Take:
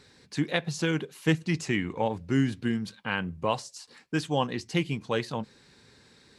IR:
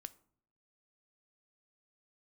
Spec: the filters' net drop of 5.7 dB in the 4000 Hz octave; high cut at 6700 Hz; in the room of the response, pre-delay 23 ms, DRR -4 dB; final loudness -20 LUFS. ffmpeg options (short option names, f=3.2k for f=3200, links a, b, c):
-filter_complex "[0:a]lowpass=6.7k,equalizer=f=4k:t=o:g=-8,asplit=2[a][b];[1:a]atrim=start_sample=2205,adelay=23[c];[b][c]afir=irnorm=-1:irlink=0,volume=9.5dB[d];[a][d]amix=inputs=2:normalize=0,volume=4.5dB"